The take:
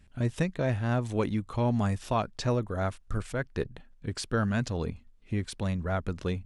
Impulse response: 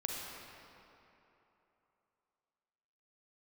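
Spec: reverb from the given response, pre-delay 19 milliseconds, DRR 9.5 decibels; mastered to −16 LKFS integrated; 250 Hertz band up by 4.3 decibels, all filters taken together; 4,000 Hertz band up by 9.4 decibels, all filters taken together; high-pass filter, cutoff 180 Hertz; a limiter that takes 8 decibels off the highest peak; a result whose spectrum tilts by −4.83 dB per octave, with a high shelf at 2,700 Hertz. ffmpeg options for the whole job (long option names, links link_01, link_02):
-filter_complex "[0:a]highpass=180,equalizer=frequency=250:width_type=o:gain=7,highshelf=frequency=2700:gain=7.5,equalizer=frequency=4000:width_type=o:gain=5,alimiter=limit=-17.5dB:level=0:latency=1,asplit=2[link_01][link_02];[1:a]atrim=start_sample=2205,adelay=19[link_03];[link_02][link_03]afir=irnorm=-1:irlink=0,volume=-12dB[link_04];[link_01][link_04]amix=inputs=2:normalize=0,volume=15dB"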